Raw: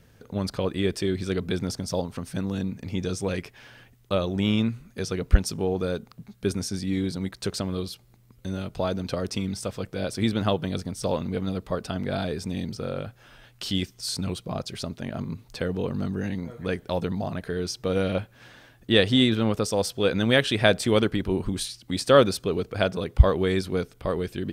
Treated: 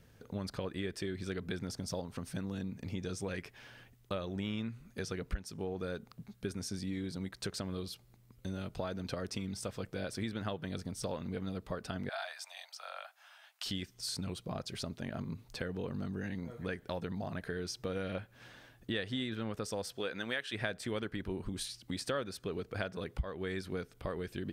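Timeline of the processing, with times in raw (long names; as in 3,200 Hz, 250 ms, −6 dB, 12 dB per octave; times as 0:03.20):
0:12.09–0:13.66: Butterworth high-pass 640 Hz 72 dB per octave
0:19.95–0:20.52: high-pass filter 300 Hz → 740 Hz 6 dB per octave
whole clip: dynamic equaliser 1,700 Hz, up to +7 dB, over −46 dBFS, Q 2; downward compressor 4 to 1, threshold −30 dBFS; level −5.5 dB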